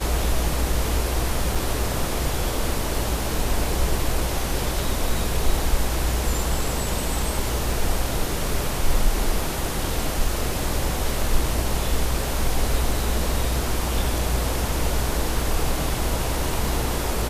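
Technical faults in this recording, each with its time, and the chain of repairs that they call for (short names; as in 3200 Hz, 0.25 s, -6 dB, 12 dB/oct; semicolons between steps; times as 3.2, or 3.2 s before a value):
1.55 gap 4.2 ms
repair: interpolate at 1.55, 4.2 ms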